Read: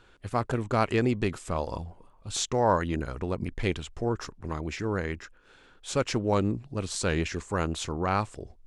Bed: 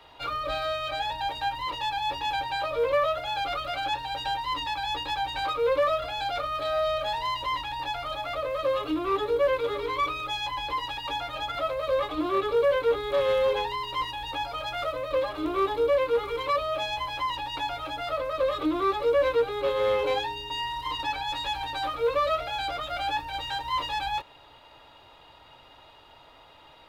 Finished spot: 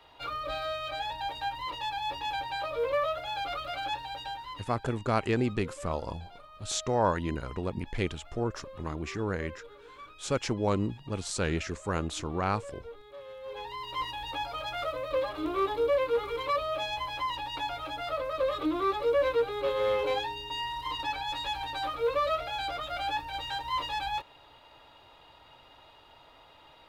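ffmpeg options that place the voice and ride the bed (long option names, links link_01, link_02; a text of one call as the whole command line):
ffmpeg -i stem1.wav -i stem2.wav -filter_complex "[0:a]adelay=4350,volume=-2.5dB[link_01];[1:a]volume=14dB,afade=type=out:start_time=3.94:duration=0.83:silence=0.141254,afade=type=in:start_time=13.42:duration=0.65:silence=0.11885[link_02];[link_01][link_02]amix=inputs=2:normalize=0" out.wav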